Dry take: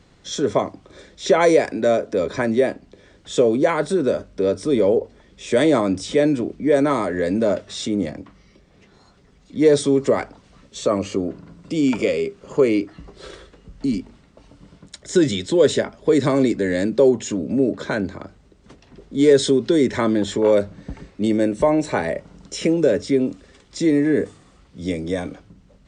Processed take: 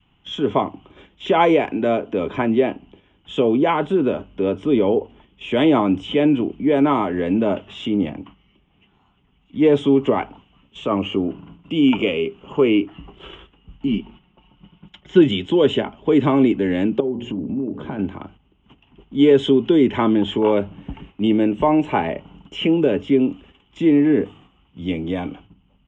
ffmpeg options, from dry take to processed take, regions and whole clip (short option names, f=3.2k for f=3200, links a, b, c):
-filter_complex "[0:a]asettb=1/sr,asplit=3[a][b][c];[a]atrim=end=13.874[d];[b]atrim=start=13.87:end=15.22,asetpts=PTS-STARTPTS,afade=t=in:d=0.004:c=qsin,afade=t=out:st=1.346:d=0.004:c=qsin,lowpass=f=5.8k:w=0.5412,lowpass=f=5.8k:w=1.3066,aecho=1:1:5.5:0.56,atrim=end_sample=59535[e];[c]atrim=start=15.216[f];[d][e]acrossfade=d=0.004:c1=hsin:c2=qsin[g];[g][f]acrossfade=d=0.004:c1=qsin:c2=hsin,asettb=1/sr,asplit=3[h][i][j];[h]atrim=end=17.004[k];[i]atrim=start=17:end=17.99,asetpts=PTS-STARTPTS,afade=t=in:d=0.004:c=qsin,afade=t=out:st=0.986:d=0.004:c=qsin,tiltshelf=f=840:g=8,bandreject=f=60:t=h:w=6,bandreject=f=120:t=h:w=6,bandreject=f=180:t=h:w=6,bandreject=f=240:t=h:w=6,bandreject=f=300:t=h:w=6,bandreject=f=360:t=h:w=6,bandreject=f=420:t=h:w=6,bandreject=f=480:t=h:w=6,bandreject=f=540:t=h:w=6,acompressor=threshold=-26dB:ratio=3:attack=3.2:release=140:knee=1:detection=peak[l];[j]atrim=start=17.986[m];[k][l]acrossfade=d=0.004:c1=hsin:c2=qsin[n];[n][m]acrossfade=d=0.004:c1=qsin:c2=hsin,adynamicequalizer=threshold=0.0355:dfrequency=450:dqfactor=0.87:tfrequency=450:tqfactor=0.87:attack=5:release=100:ratio=0.375:range=3.5:mode=boostabove:tftype=bell,agate=range=-7dB:threshold=-42dB:ratio=16:detection=peak,firequalizer=gain_entry='entry(270,0);entry(540,-12);entry(820,4);entry(1800,-6);entry(3000,13);entry(4300,-29);entry(6700,-18);entry(10000,-30)':delay=0.05:min_phase=1"